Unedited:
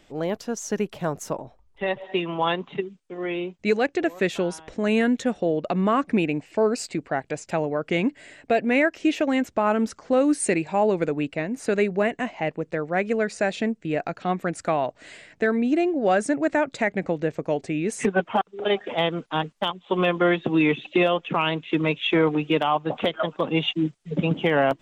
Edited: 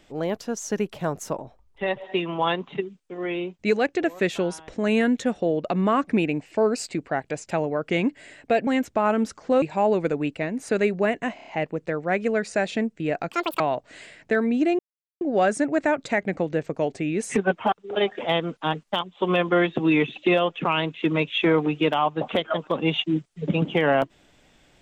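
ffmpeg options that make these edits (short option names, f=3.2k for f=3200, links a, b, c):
-filter_complex "[0:a]asplit=10[a][b][c][d][e][f][g][h][i][j];[a]atrim=end=8.672[k];[b]atrim=start=9.278:end=10.232[l];[c]atrim=start=10.588:end=12.352[m];[d]atrim=start=12.318:end=12.352[n];[e]atrim=start=12.318:end=12.352[o];[f]atrim=start=12.318:end=12.352[p];[g]atrim=start=12.318:end=14.164[q];[h]atrim=start=14.16:end=14.71,asetpts=PTS-STARTPTS,asetrate=83790,aresample=44100[r];[i]atrim=start=14.706:end=15.9,asetpts=PTS-STARTPTS,afade=t=out:st=1.19:d=0.004:c=hsin,apad=pad_dur=0.42[s];[j]atrim=start=15.9,asetpts=PTS-STARTPTS,afade=t=in:d=0.004:c=hsin[t];[k][l]acrossfade=d=0.004:c1=hsin:c2=hsin[u];[u][m]acrossfade=d=0.004:c1=hsin:c2=hsin[v];[v][n]acrossfade=d=0.004:c1=hsin:c2=hsin[w];[w][o]acrossfade=d=0.004:c1=hsin:c2=hsin[x];[x][p]acrossfade=d=0.004:c1=hsin:c2=hsin[y];[y][q]acrossfade=d=0.004:c1=hsin:c2=hsin[z];[z][r]acrossfade=d=0.004:c1=hsin:c2=hsin[aa];[s][t]concat=n=2:v=0:a=1[ab];[aa][ab]acrossfade=d=0.004:c1=hsin:c2=hsin"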